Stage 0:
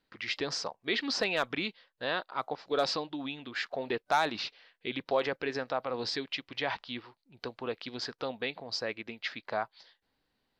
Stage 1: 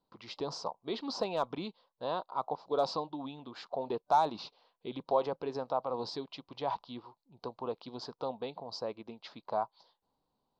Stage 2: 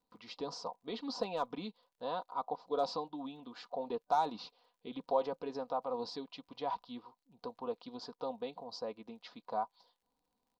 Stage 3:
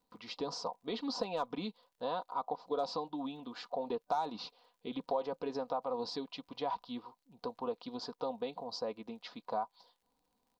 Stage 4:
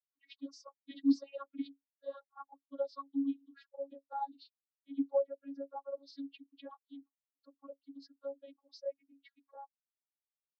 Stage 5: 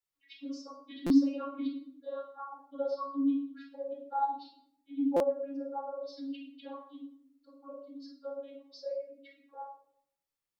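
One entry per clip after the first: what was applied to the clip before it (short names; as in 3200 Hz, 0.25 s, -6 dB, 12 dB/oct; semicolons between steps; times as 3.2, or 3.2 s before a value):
EQ curve 100 Hz 0 dB, 160 Hz +5 dB, 280 Hz +1 dB, 690 Hz +5 dB, 1000 Hz +9 dB, 1800 Hz -18 dB, 4000 Hz -3 dB, 9800 Hz -6 dB; gain -4.5 dB
comb 4.1 ms, depth 55%; crackle 74/s -62 dBFS; gain -4.5 dB
compressor 2.5:1, threshold -37 dBFS, peak gain reduction 8 dB; gain +4 dB
per-bin expansion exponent 3; vocoder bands 32, saw 277 Hz; gain +7 dB
reverb RT60 0.70 s, pre-delay 16 ms, DRR -0.5 dB; stuck buffer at 1.06/5.16, samples 256, times 6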